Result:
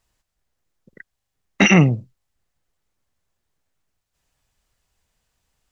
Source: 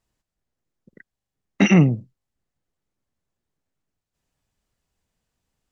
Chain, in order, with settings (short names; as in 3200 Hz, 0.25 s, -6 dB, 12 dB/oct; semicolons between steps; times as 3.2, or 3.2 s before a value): bell 230 Hz -8 dB 2.3 oct; gain +7.5 dB